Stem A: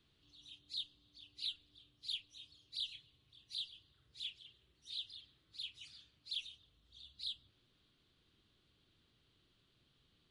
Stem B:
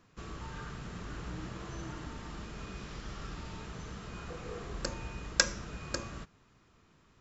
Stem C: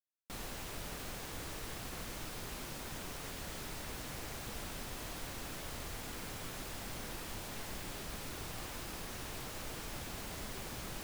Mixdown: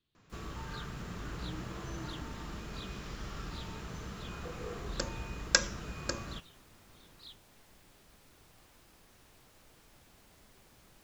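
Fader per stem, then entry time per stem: −9.5, +0.5, −17.5 decibels; 0.00, 0.15, 0.00 seconds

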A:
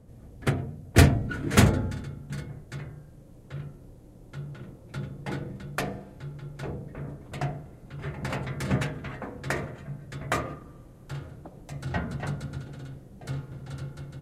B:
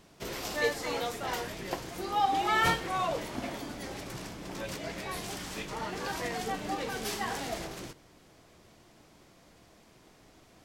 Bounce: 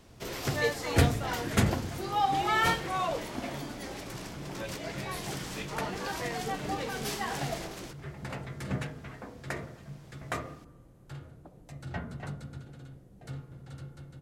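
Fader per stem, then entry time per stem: −7.0, 0.0 decibels; 0.00, 0.00 seconds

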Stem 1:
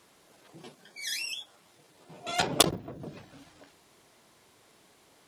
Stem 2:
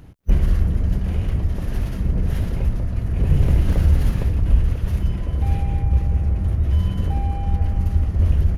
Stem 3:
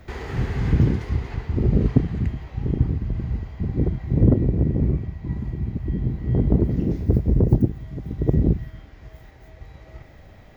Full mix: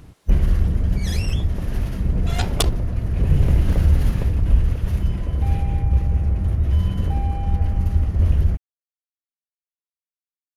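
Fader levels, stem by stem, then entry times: −1.0 dB, 0.0 dB, muted; 0.00 s, 0.00 s, muted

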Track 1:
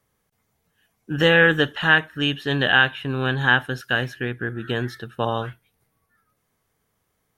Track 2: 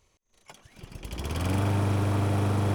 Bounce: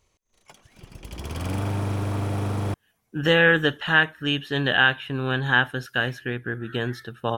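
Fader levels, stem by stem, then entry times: −2.0, −1.0 decibels; 2.05, 0.00 seconds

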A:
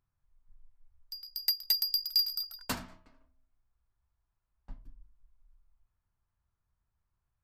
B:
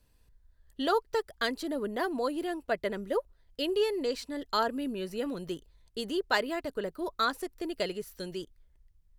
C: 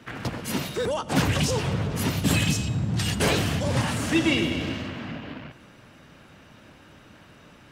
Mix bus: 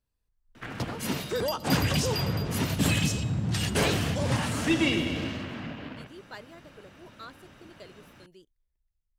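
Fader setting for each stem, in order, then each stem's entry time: −8.5, −16.5, −2.5 decibels; 0.00, 0.00, 0.55 seconds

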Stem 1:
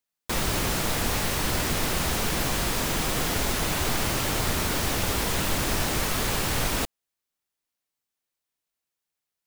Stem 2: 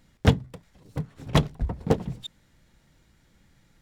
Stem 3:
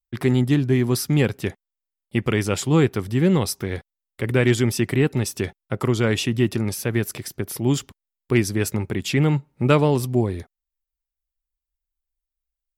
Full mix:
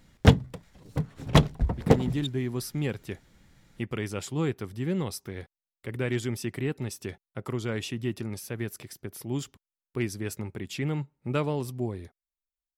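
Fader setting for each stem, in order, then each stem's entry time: muted, +2.0 dB, −11.0 dB; muted, 0.00 s, 1.65 s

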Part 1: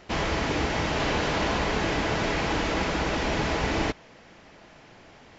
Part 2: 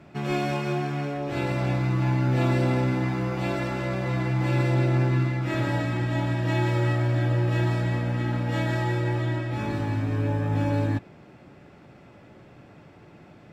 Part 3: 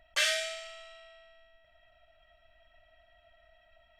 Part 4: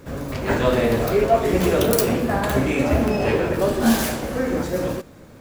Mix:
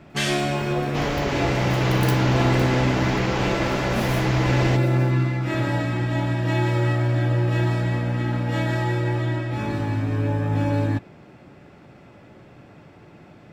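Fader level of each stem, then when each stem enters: 0.0, +2.5, +1.5, −13.5 decibels; 0.85, 0.00, 0.00, 0.10 seconds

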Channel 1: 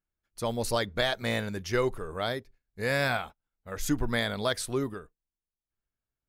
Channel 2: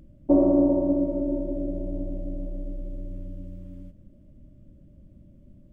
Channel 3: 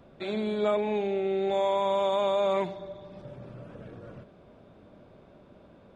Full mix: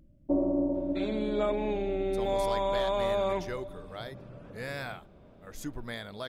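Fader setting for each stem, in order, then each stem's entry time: −10.5, −8.5, −3.0 decibels; 1.75, 0.00, 0.75 seconds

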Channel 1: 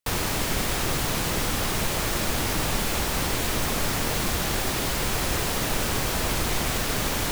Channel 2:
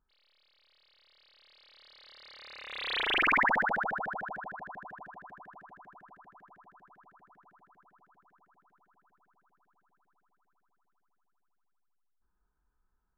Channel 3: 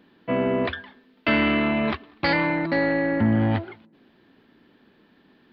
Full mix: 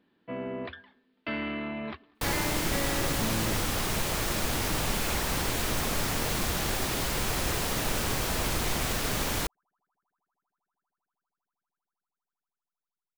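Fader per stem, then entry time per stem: −3.5, −17.5, −12.5 decibels; 2.15, 1.80, 0.00 seconds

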